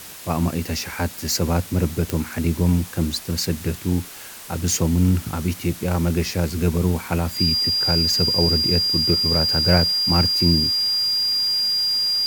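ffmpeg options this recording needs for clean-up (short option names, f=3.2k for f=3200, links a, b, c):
-af "adeclick=t=4,bandreject=f=4.8k:w=30,afftdn=nr=29:nf=-37"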